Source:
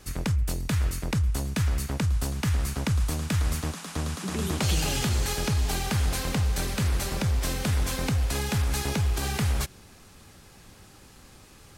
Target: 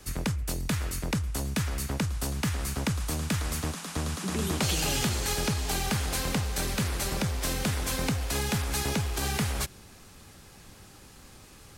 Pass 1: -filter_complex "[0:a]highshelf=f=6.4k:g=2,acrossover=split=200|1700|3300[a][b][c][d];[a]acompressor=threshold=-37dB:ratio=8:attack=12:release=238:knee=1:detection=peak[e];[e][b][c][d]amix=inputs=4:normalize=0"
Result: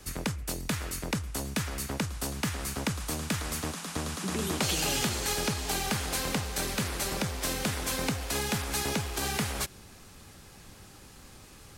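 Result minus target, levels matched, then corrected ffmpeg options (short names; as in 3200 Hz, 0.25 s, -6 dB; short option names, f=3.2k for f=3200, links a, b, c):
compressor: peak gain reduction +6.5 dB
-filter_complex "[0:a]highshelf=f=6.4k:g=2,acrossover=split=200|1700|3300[a][b][c][d];[a]acompressor=threshold=-29.5dB:ratio=8:attack=12:release=238:knee=1:detection=peak[e];[e][b][c][d]amix=inputs=4:normalize=0"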